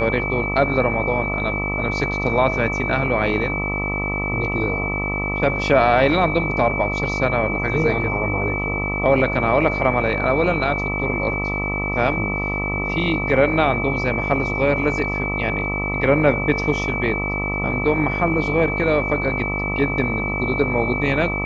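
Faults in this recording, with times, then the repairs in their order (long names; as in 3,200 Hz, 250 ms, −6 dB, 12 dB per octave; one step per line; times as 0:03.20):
mains buzz 50 Hz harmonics 26 −26 dBFS
whistle 2,300 Hz −24 dBFS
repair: hum removal 50 Hz, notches 26
notch filter 2,300 Hz, Q 30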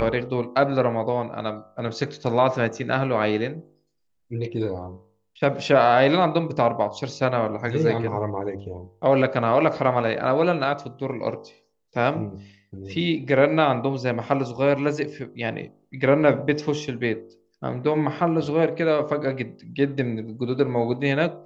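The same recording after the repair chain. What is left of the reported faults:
none of them is left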